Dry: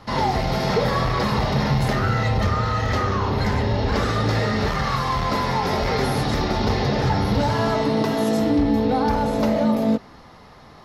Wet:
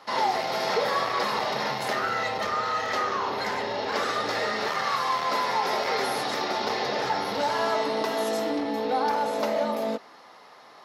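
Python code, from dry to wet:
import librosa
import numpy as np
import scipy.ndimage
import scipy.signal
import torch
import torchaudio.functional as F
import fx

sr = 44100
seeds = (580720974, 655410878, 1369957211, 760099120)

y = scipy.signal.sosfilt(scipy.signal.butter(2, 480.0, 'highpass', fs=sr, output='sos'), x)
y = y * 10.0 ** (-1.5 / 20.0)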